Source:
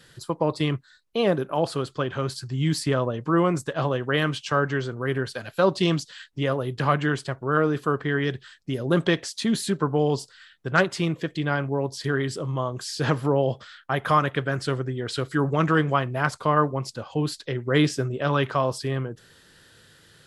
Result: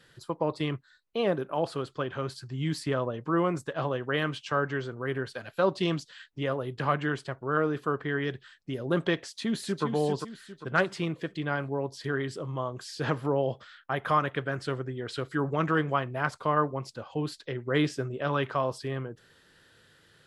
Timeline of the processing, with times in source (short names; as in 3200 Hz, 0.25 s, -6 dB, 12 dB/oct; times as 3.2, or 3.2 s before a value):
9.23–9.84 echo throw 0.4 s, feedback 40%, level -7 dB
whole clip: tone controls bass -3 dB, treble -6 dB; gain -4.5 dB